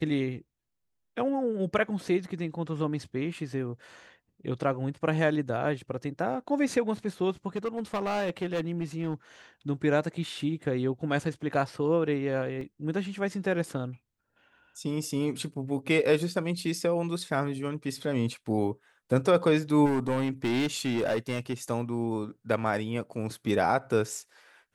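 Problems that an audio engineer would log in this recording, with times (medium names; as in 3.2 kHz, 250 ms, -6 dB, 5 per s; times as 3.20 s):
7.56–9.14 s: clipped -25.5 dBFS
12.61 s: dropout 2.7 ms
19.85–21.54 s: clipped -23.5 dBFS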